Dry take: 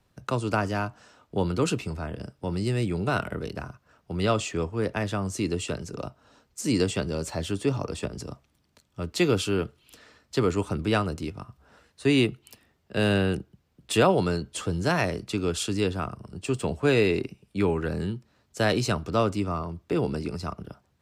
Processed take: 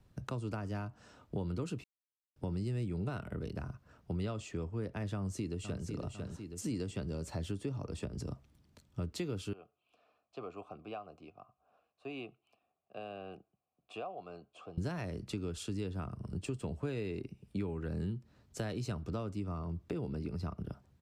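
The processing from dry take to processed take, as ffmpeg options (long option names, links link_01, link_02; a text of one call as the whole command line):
ffmpeg -i in.wav -filter_complex "[0:a]asplit=2[link_01][link_02];[link_02]afade=type=in:start_time=5.14:duration=0.01,afade=type=out:start_time=5.86:duration=0.01,aecho=0:1:500|1000|1500|2000:0.298538|0.104488|0.0365709|0.0127998[link_03];[link_01][link_03]amix=inputs=2:normalize=0,asettb=1/sr,asplit=3[link_04][link_05][link_06];[link_04]atrim=end=9.534[link_07];[link_05]atrim=start=9.53:end=14.78,asetpts=PTS-STARTPTS,afade=type=in:duration=0.004:curve=qsin,afade=type=out:start_time=5.246:duration=0.004:curve=qsin,asplit=3[link_08][link_09][link_10];[link_08]bandpass=frequency=730:width_type=q:width=8,volume=0dB[link_11];[link_09]bandpass=frequency=1090:width_type=q:width=8,volume=-6dB[link_12];[link_10]bandpass=frequency=2440:width_type=q:width=8,volume=-9dB[link_13];[link_11][link_12][link_13]amix=inputs=3:normalize=0[link_14];[link_06]atrim=start=14.776[link_15];[link_07][link_14]acrossfade=duration=0.004:curve1=hsin:curve2=qsin[link_16];[link_16][link_15]acrossfade=duration=0.004:curve1=qsin:curve2=hsin,asettb=1/sr,asplit=3[link_17][link_18][link_19];[link_17]atrim=end=20.084[link_20];[link_18]atrim=start=20.08:end=20.53,asetpts=PTS-STARTPTS,afade=type=in:duration=0.004:curve=qsin,afade=type=out:start_time=0.446:duration=0.004:curve=qsin,equalizer=frequency=7600:width_type=o:width=0.97:gain=-7[link_21];[link_19]atrim=start=20.526[link_22];[link_20][link_21]acrossfade=duration=0.004:curve1=hsin:curve2=qsin[link_23];[link_23][link_22]acrossfade=duration=0.004:curve1=qsin:curve2=hsin,asplit=3[link_24][link_25][link_26];[link_24]atrim=end=1.84,asetpts=PTS-STARTPTS,afade=type=out:start_time=1.836:duration=0.004:curve=hsin[link_27];[link_25]atrim=start=1.84:end=2.36,asetpts=PTS-STARTPTS,volume=0[link_28];[link_26]atrim=start=2.36,asetpts=PTS-STARTPTS,afade=type=in:duration=0.004:curve=hsin[link_29];[link_27][link_28][link_29]concat=n=3:v=0:a=1,acompressor=threshold=-38dB:ratio=4,lowshelf=frequency=320:gain=10.5,volume=-5dB" out.wav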